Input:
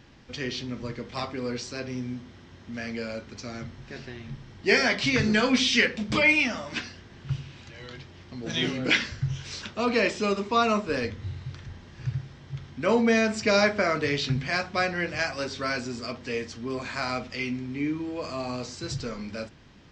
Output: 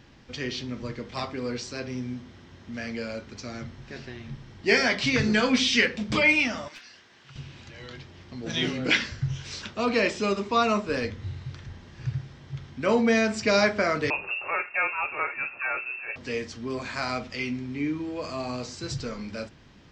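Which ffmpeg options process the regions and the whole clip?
-filter_complex "[0:a]asettb=1/sr,asplit=3[a][b][c];[a]atrim=end=6.684[d];[b]atrim=start=6.68:end=7.36,asetpts=PTS-STARTPTS,afade=t=in:d=0.004:c=qsin,afade=t=out:st=0.676:d=0.004:c=qsin,highpass=f=1.1k:p=1,aeval=exprs='clip(val(0),-1,0.0266)':c=same,acompressor=threshold=-45dB:ratio=3:attack=3.2:release=140:knee=1:detection=peak[e];[c]atrim=start=7.356[f];[d][e]acrossfade=d=0.004:c1=hsin:c2=qsin[g];[g][f]acrossfade=d=0.004:c1=qsin:c2=hsin,asettb=1/sr,asplit=3[h][i][j];[h]atrim=end=14.104[k];[i]atrim=start=14.1:end=16.16,asetpts=PTS-STARTPTS,afade=t=in:d=0.004:c=qsin,afade=t=out:st=2.056:d=0.004:c=qsin,highpass=f=170:w=0.5412,highpass=f=170:w=1.3066,lowpass=f=2.5k:t=q:w=0.5098,lowpass=f=2.5k:t=q:w=0.6013,lowpass=f=2.5k:t=q:w=0.9,lowpass=f=2.5k:t=q:w=2.563,afreqshift=-2900[l];[j]atrim=start=16.156[m];[k][l]acrossfade=d=0.004:c1=hsin:c2=qsin[n];[n][m]acrossfade=d=0.004:c1=qsin:c2=hsin"

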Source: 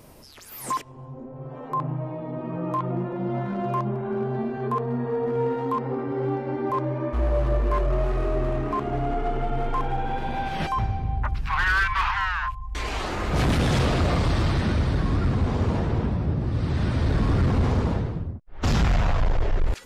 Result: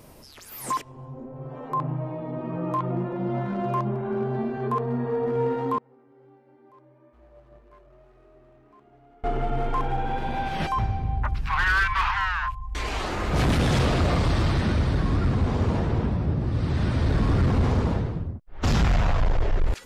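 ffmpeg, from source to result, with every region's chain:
-filter_complex "[0:a]asettb=1/sr,asplit=3[a][b][c];[a]atrim=end=5.784[d];[b]atrim=start=5.78:end=9.24,asetpts=PTS-STARTPTS,afade=t=in:d=0.004:c=qsin,afade=t=out:st=3.456:d=0.004:c=qsin,agate=range=-27dB:threshold=-18dB:ratio=16:release=100:detection=peak,lowshelf=f=110:g=-9,bandreject=f=1.1k:w=16[e];[c]atrim=start=9.236[f];[d][e]acrossfade=d=0.004:c1=hsin:c2=qsin[g];[g][f]acrossfade=d=0.004:c1=qsin:c2=hsin"

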